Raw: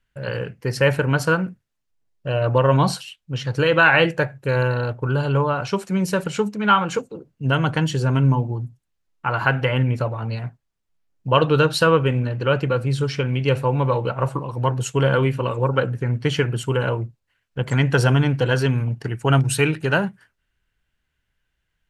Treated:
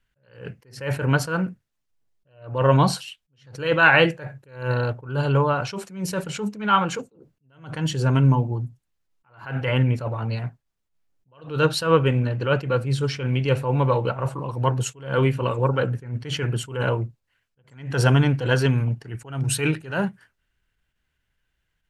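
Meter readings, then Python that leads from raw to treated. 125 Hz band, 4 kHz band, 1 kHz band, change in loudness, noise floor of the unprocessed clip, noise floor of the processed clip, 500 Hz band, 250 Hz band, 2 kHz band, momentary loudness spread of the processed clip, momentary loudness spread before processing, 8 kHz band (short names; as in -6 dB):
-2.0 dB, -2.5 dB, -2.5 dB, -2.0 dB, -75 dBFS, -76 dBFS, -3.5 dB, -2.5 dB, -3.0 dB, 14 LU, 11 LU, -0.5 dB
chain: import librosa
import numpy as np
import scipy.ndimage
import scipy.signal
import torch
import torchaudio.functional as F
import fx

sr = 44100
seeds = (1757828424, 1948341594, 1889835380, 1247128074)

y = fx.attack_slew(x, sr, db_per_s=130.0)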